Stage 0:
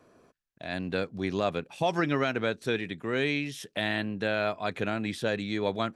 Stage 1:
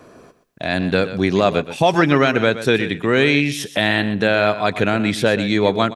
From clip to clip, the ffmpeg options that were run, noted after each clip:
-filter_complex "[0:a]asplit=2[s0][s1];[s1]alimiter=limit=0.075:level=0:latency=1:release=467,volume=1.12[s2];[s0][s2]amix=inputs=2:normalize=0,aecho=1:1:124|248:0.224|0.0358,volume=2.66"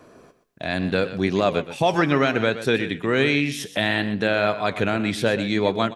-af "flanger=delay=2.7:depth=9.7:regen=87:speed=0.7:shape=triangular"

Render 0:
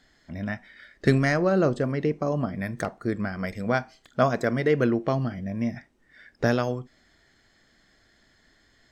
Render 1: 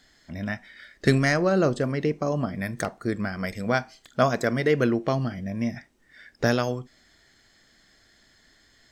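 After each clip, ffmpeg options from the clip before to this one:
-af "highshelf=f=3100:g=7.5"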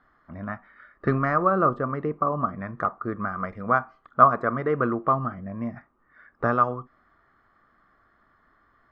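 -af "lowpass=f=1200:t=q:w=11,volume=0.631"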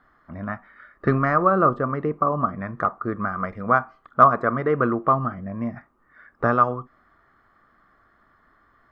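-af "deesser=0.7,volume=1.41"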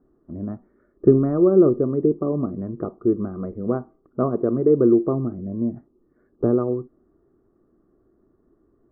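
-af "lowpass=f=370:t=q:w=4.1"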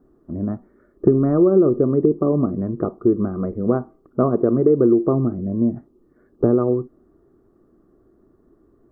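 -af "acompressor=threshold=0.141:ratio=4,volume=1.88"

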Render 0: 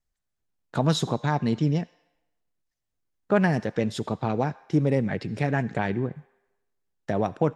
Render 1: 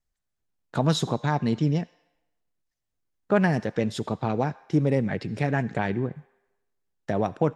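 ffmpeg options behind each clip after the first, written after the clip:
-af anull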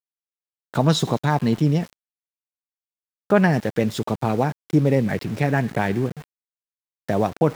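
-af "areverse,acompressor=mode=upward:threshold=0.0141:ratio=2.5,areverse,aeval=exprs='val(0)*gte(abs(val(0)),0.0106)':c=same,volume=1.68"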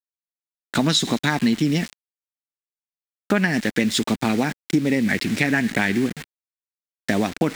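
-af "equalizer=f=125:t=o:w=1:g=-10,equalizer=f=250:t=o:w=1:g=8,equalizer=f=500:t=o:w=1:g=-6,equalizer=f=1000:t=o:w=1:g=-5,equalizer=f=2000:t=o:w=1:g=9,equalizer=f=4000:t=o:w=1:g=6,equalizer=f=8000:t=o:w=1:g=8,acrusher=bits=8:dc=4:mix=0:aa=0.000001,acompressor=threshold=0.112:ratio=6,volume=1.5"

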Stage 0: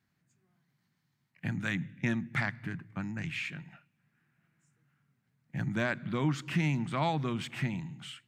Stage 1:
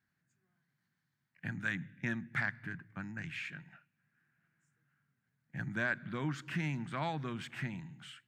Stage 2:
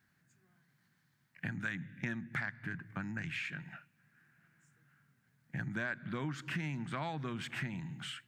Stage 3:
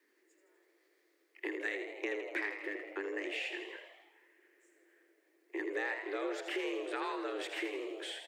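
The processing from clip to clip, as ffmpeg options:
-af "equalizer=f=1600:t=o:w=0.47:g=9,volume=0.447"
-af "acompressor=threshold=0.00447:ratio=3,volume=2.66"
-filter_complex "[0:a]asplit=9[s0][s1][s2][s3][s4][s5][s6][s7][s8];[s1]adelay=81,afreqshift=81,volume=0.398[s9];[s2]adelay=162,afreqshift=162,volume=0.243[s10];[s3]adelay=243,afreqshift=243,volume=0.148[s11];[s4]adelay=324,afreqshift=324,volume=0.0902[s12];[s5]adelay=405,afreqshift=405,volume=0.055[s13];[s6]adelay=486,afreqshift=486,volume=0.0335[s14];[s7]adelay=567,afreqshift=567,volume=0.0204[s15];[s8]adelay=648,afreqshift=648,volume=0.0124[s16];[s0][s9][s10][s11][s12][s13][s14][s15][s16]amix=inputs=9:normalize=0,afreqshift=200"

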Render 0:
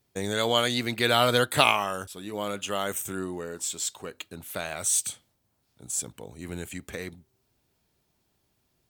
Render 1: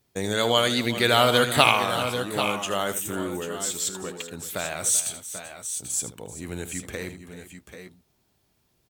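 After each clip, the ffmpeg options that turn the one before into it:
-af "aecho=1:1:78|386|788|804:0.251|0.178|0.299|0.158,volume=1.33"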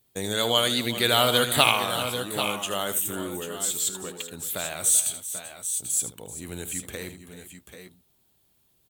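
-af "aexciter=amount=1.3:drive=6.6:freq=3000,volume=0.708"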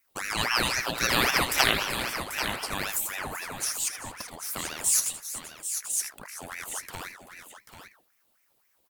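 -af "bandreject=f=198.9:t=h:w=4,bandreject=f=397.8:t=h:w=4,bandreject=f=596.7:t=h:w=4,bandreject=f=795.6:t=h:w=4,bandreject=f=994.5:t=h:w=4,bandreject=f=1193.4:t=h:w=4,bandreject=f=1392.3:t=h:w=4,bandreject=f=1591.2:t=h:w=4,bandreject=f=1790.1:t=h:w=4,bandreject=f=1989:t=h:w=4,bandreject=f=2187.9:t=h:w=4,bandreject=f=2386.8:t=h:w=4,bandreject=f=2585.7:t=h:w=4,bandreject=f=2784.6:t=h:w=4,bandreject=f=2983.5:t=h:w=4,bandreject=f=3182.4:t=h:w=4,bandreject=f=3381.3:t=h:w=4,bandreject=f=3580.2:t=h:w=4,bandreject=f=3779.1:t=h:w=4,bandreject=f=3978:t=h:w=4,bandreject=f=4176.9:t=h:w=4,bandreject=f=4375.8:t=h:w=4,bandreject=f=4574.7:t=h:w=4,bandreject=f=4773.6:t=h:w=4,bandreject=f=4972.5:t=h:w=4,bandreject=f=5171.4:t=h:w=4,aeval=exprs='val(0)*sin(2*PI*1300*n/s+1300*0.7/3.8*sin(2*PI*3.8*n/s))':c=same"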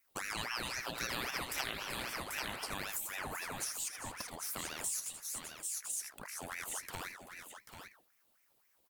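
-af "acompressor=threshold=0.0224:ratio=4,volume=0.668"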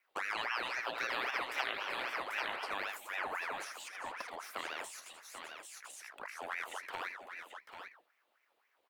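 -filter_complex "[0:a]acrossover=split=360 3500:gain=0.0794 1 0.1[s0][s1][s2];[s0][s1][s2]amix=inputs=3:normalize=0,volume=1.68"

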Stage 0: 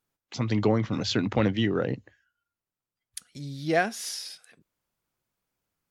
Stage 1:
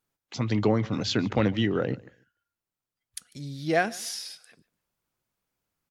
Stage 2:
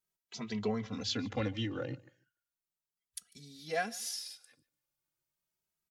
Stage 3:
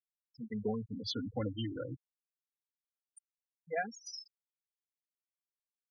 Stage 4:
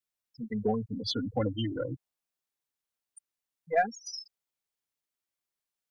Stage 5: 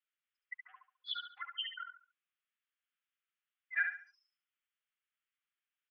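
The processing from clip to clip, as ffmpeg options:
-af "aecho=1:1:147|294:0.0708|0.0163"
-filter_complex "[0:a]highshelf=f=3000:g=8.5,asplit=2[s0][s1];[s1]adelay=2.7,afreqshift=0.35[s2];[s0][s2]amix=inputs=2:normalize=1,volume=0.376"
-af "afftfilt=real='re*gte(hypot(re,im),0.0355)':imag='im*gte(hypot(re,im),0.0355)':win_size=1024:overlap=0.75,volume=0.841"
-af "adynamicequalizer=threshold=0.00251:dfrequency=710:dqfactor=2:tfrequency=710:tqfactor=2:attack=5:release=100:ratio=0.375:range=3:mode=boostabove:tftype=bell,aeval=exprs='0.106*(cos(1*acos(clip(val(0)/0.106,-1,1)))-cos(1*PI/2))+0.000841*(cos(8*acos(clip(val(0)/0.106,-1,1)))-cos(8*PI/2))':c=same,volume=1.88"
-filter_complex "[0:a]asuperpass=centerf=2000:order=12:qfactor=0.92,asplit=2[s0][s1];[s1]aecho=0:1:70|140|210|280:0.501|0.155|0.0482|0.0149[s2];[s0][s2]amix=inputs=2:normalize=0,volume=1.26"

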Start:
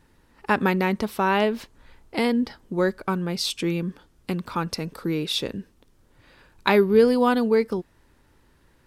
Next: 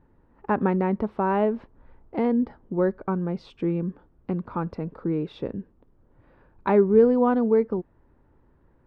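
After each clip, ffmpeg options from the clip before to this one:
-af "lowpass=1000"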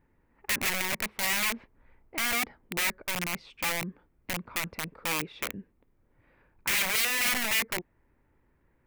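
-af "aeval=exprs='(mod(11.9*val(0)+1,2)-1)/11.9':c=same,crystalizer=i=2:c=0,equalizer=f=2200:t=o:w=0.71:g=12,volume=0.376"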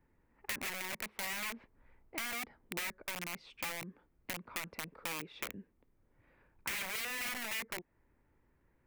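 -filter_complex "[0:a]acrossover=split=190|2300[s0][s1][s2];[s0]acompressor=threshold=0.00224:ratio=4[s3];[s1]acompressor=threshold=0.0141:ratio=4[s4];[s2]acompressor=threshold=0.0178:ratio=4[s5];[s3][s4][s5]amix=inputs=3:normalize=0,volume=0.631"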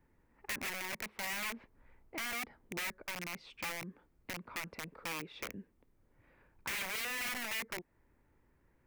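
-af "volume=50.1,asoftclip=hard,volume=0.02,volume=1.19"

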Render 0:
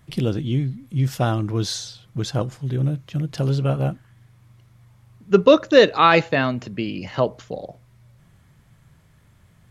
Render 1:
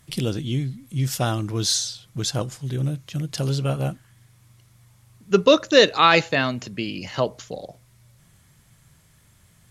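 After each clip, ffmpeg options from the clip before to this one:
-af "equalizer=f=9300:w=0.34:g=13,volume=0.708"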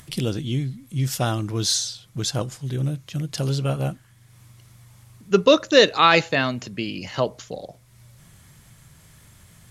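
-af "acompressor=mode=upward:threshold=0.00794:ratio=2.5"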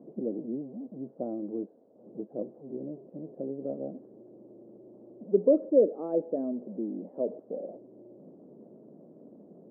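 -af "aeval=exprs='val(0)+0.5*0.0422*sgn(val(0))':c=same,asuperpass=centerf=360:order=8:qfactor=0.9,volume=0.501"

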